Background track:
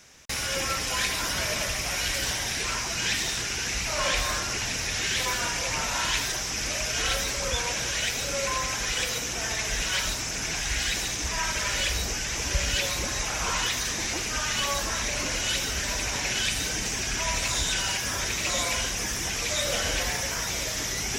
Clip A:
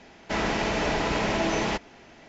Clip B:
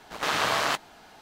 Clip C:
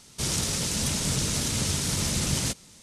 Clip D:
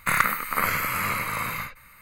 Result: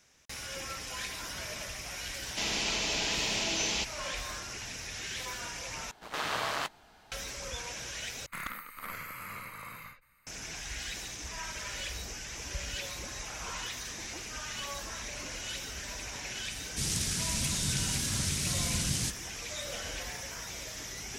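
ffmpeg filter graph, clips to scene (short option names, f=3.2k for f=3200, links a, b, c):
-filter_complex "[0:a]volume=-11.5dB[a];[1:a]aexciter=amount=5.7:drive=6.3:freq=2.4k[b];[2:a]asubboost=boost=5.5:cutoff=140[c];[4:a]aeval=exprs='clip(val(0),-1,0.0944)':c=same[d];[3:a]equalizer=f=720:t=o:w=1.7:g=-14.5[e];[a]asplit=3[f][g][h];[f]atrim=end=5.914[i];[c]atrim=end=1.21,asetpts=PTS-STARTPTS,volume=-7.5dB[j];[g]atrim=start=7.116:end=8.264[k];[d]atrim=end=2.01,asetpts=PTS-STARTPTS,volume=-16dB[l];[h]atrim=start=10.266[m];[b]atrim=end=2.28,asetpts=PTS-STARTPTS,volume=-12.5dB,afade=t=in:d=0.004:c=hsin,afade=t=out:st=2.276:d=0.004:c=hsin,adelay=2070[n];[e]atrim=end=2.82,asetpts=PTS-STARTPTS,volume=-4dB,afade=t=in:d=0.004:c=hsin,afade=t=out:st=2.816:d=0.004:c=hsin,adelay=16580[o];[i][j]acrossfade=d=0.004:c1=hsin:c2=hsin[p];[p][k]acrossfade=d=0.004:c1=hsin:c2=hsin[q];[q][l]acrossfade=d=0.004:c1=hsin:c2=hsin[r];[r][m]acrossfade=d=0.004:c1=hsin:c2=hsin[s];[s][n][o]amix=inputs=3:normalize=0"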